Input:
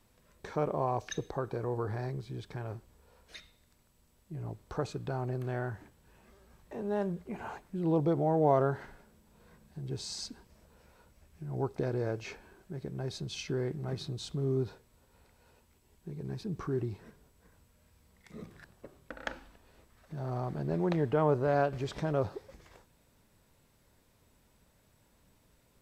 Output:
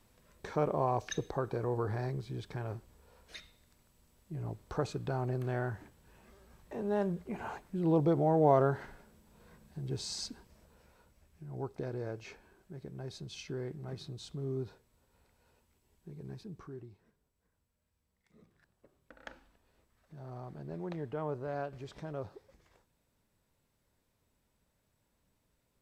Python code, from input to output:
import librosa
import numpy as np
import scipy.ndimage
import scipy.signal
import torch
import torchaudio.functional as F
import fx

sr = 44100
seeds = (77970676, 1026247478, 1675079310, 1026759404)

y = fx.gain(x, sr, db=fx.line((10.27, 0.5), (11.5, -6.0), (16.3, -6.0), (16.95, -17.0), (18.51, -17.0), (19.31, -10.0)))